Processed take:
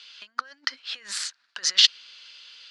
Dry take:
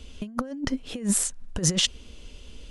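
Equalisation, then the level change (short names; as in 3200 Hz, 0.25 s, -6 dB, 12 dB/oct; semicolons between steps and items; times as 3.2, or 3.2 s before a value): resonant high-pass 1500 Hz, resonance Q 2.6; synth low-pass 4500 Hz, resonance Q 4.8; -1.0 dB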